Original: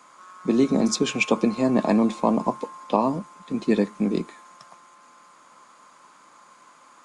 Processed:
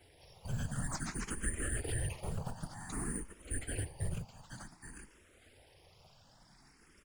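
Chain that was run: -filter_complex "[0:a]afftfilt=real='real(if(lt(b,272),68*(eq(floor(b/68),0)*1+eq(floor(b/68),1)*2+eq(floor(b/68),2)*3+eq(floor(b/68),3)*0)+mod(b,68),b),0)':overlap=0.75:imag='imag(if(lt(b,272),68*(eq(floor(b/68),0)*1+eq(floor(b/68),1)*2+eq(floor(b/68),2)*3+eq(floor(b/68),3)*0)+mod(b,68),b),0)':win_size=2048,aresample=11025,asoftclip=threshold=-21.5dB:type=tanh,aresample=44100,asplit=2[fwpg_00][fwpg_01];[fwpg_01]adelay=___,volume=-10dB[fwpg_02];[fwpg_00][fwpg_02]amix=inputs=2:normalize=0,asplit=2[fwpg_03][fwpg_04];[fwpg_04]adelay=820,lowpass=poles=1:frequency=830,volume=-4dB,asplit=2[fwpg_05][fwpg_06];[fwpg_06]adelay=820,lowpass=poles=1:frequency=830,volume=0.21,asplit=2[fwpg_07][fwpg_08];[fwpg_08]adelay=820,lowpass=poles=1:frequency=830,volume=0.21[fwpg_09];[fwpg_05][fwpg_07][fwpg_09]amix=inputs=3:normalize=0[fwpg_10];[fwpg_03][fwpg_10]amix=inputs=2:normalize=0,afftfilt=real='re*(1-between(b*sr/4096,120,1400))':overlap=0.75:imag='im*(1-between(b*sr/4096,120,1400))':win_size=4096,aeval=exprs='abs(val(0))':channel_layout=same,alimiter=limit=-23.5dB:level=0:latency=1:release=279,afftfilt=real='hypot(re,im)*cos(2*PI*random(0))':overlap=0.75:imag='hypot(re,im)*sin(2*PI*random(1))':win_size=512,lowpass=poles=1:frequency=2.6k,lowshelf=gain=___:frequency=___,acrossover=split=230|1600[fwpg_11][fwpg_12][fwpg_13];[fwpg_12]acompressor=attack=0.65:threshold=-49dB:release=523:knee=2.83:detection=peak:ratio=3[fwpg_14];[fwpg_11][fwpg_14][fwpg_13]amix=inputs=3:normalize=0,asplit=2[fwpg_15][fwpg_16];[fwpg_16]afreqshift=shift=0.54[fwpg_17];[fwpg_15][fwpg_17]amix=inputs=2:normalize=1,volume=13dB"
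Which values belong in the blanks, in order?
13, -9.5, 120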